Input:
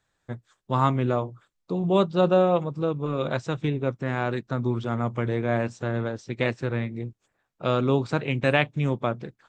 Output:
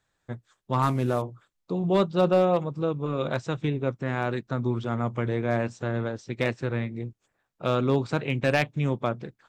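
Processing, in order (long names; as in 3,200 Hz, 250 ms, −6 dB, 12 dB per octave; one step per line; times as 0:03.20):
0:00.82–0:01.22: variable-slope delta modulation 64 kbit/s
hard clipping −12 dBFS, distortion −23 dB
level −1 dB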